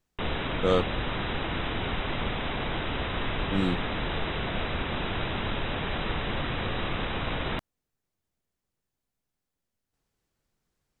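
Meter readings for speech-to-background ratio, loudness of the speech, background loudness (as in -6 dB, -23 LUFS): 1.5 dB, -29.5 LUFS, -31.0 LUFS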